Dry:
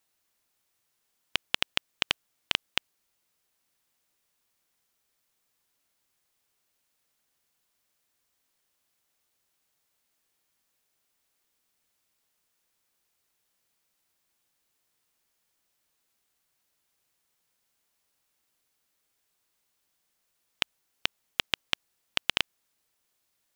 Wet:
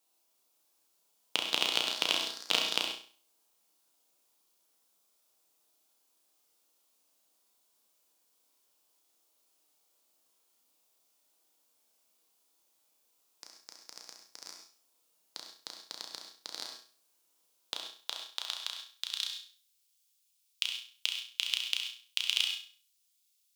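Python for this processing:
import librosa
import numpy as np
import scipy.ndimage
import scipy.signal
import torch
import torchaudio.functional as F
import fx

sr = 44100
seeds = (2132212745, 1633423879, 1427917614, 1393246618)

y = scipy.signal.sosfilt(scipy.signal.butter(2, 100.0, 'highpass', fs=sr, output='sos'), x)
y = fx.peak_eq(y, sr, hz=1800.0, db=-11.0, octaves=0.89)
y = fx.echo_pitch(y, sr, ms=390, semitones=3, count=3, db_per_echo=-6.0)
y = fx.filter_sweep_highpass(y, sr, from_hz=280.0, to_hz=2700.0, start_s=17.44, end_s=19.31, q=0.83)
y = fx.room_flutter(y, sr, wall_m=5.7, rt60_s=0.42)
y = fx.rev_gated(y, sr, seeds[0], gate_ms=160, shape='flat', drr_db=3.5)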